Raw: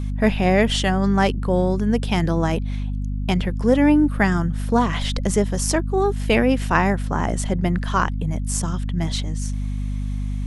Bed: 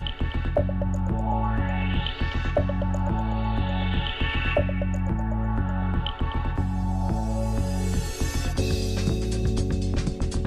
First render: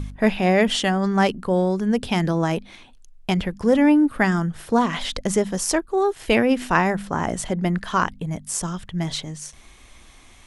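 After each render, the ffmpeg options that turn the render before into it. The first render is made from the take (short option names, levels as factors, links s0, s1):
-af "bandreject=f=50:t=h:w=4,bandreject=f=100:t=h:w=4,bandreject=f=150:t=h:w=4,bandreject=f=200:t=h:w=4,bandreject=f=250:t=h:w=4"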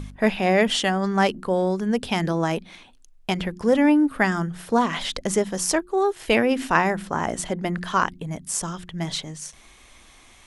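-af "lowshelf=f=190:g=-6,bandreject=f=89.3:t=h:w=4,bandreject=f=178.6:t=h:w=4,bandreject=f=267.9:t=h:w=4,bandreject=f=357.2:t=h:w=4"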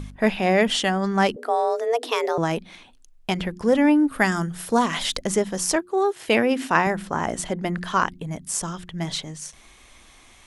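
-filter_complex "[0:a]asettb=1/sr,asplit=3[s0][s1][s2];[s0]atrim=end=1.364[s3];[s1]atrim=start=1.36:end=2.38,asetpts=PTS-STARTPTS,afade=t=in:d=0.004:c=qsin,afade=t=out:st=1.016:d=0.004:c=qsin,afreqshift=230[s4];[s2]atrim=start=2.376[s5];[s3][s4]acrossfade=d=0.004:c1=hsin:c2=qsin[s6];[s6][s5]acrossfade=d=0.004:c1=qsin:c2=hsin,asettb=1/sr,asplit=3[s7][s8][s9];[s7]atrim=end=4.124[s10];[s8]atrim=start=4.12:end=5.21,asetpts=PTS-STARTPTS,afade=t=in:d=0.004:c=qsin,afade=t=out:st=1.086:d=0.004:c=qsin,highshelf=f=6000:g=11.5[s11];[s9]atrim=start=5.206[s12];[s10][s11]acrossfade=d=0.004:c1=hsin:c2=qsin[s13];[s13][s12]acrossfade=d=0.004:c1=qsin:c2=hsin,asettb=1/sr,asplit=3[s14][s15][s16];[s14]atrim=end=5.764[s17];[s15]atrim=start=5.76:end=6.87,asetpts=PTS-STARTPTS,afade=t=in:d=0.004:c=qsin,afade=t=out:st=1.106:d=0.004:c=qsin,highpass=110[s18];[s16]atrim=start=6.866[s19];[s17][s18]acrossfade=d=0.004:c1=hsin:c2=qsin[s20];[s20][s19]acrossfade=d=0.004:c1=qsin:c2=hsin"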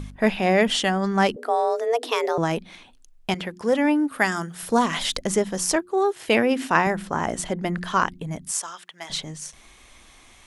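-filter_complex "[0:a]asettb=1/sr,asplit=3[s0][s1][s2];[s0]atrim=end=3.344[s3];[s1]atrim=start=3.34:end=4.63,asetpts=PTS-STARTPTS,afade=t=in:d=0.004:c=qsin,afade=t=out:st=1.286:d=0.004:c=qsin,highpass=f=330:p=1[s4];[s2]atrim=start=4.626[s5];[s3][s4]acrossfade=d=0.004:c1=hsin:c2=qsin[s6];[s6][s5]acrossfade=d=0.004:c1=qsin:c2=hsin,asettb=1/sr,asplit=3[s7][s8][s9];[s7]atrim=end=8.514[s10];[s8]atrim=start=8.51:end=9.1,asetpts=PTS-STARTPTS,afade=t=in:d=0.004:c=qsin,afade=t=out:st=0.586:d=0.004:c=qsin,highpass=810[s11];[s9]atrim=start=9.096[s12];[s10][s11]acrossfade=d=0.004:c1=hsin:c2=qsin[s13];[s13][s12]acrossfade=d=0.004:c1=qsin:c2=hsin"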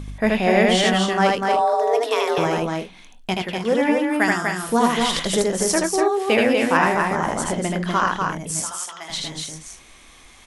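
-filter_complex "[0:a]asplit=2[s0][s1];[s1]adelay=22,volume=0.211[s2];[s0][s2]amix=inputs=2:normalize=0,asplit=2[s3][s4];[s4]aecho=0:1:78.72|244.9|288.6:0.794|0.631|0.282[s5];[s3][s5]amix=inputs=2:normalize=0"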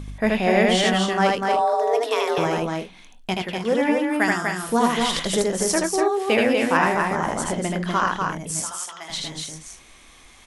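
-af "volume=0.841"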